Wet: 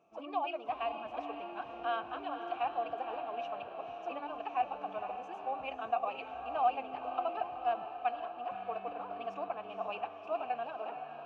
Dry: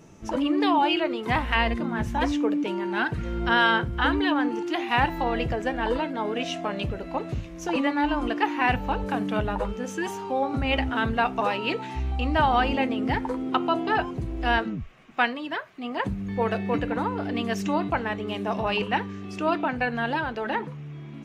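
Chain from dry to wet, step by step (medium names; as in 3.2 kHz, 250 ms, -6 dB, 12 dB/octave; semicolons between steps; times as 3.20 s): vowel filter a; echo that smears into a reverb 966 ms, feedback 60%, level -7.5 dB; time stretch by phase-locked vocoder 0.53×; trim -1.5 dB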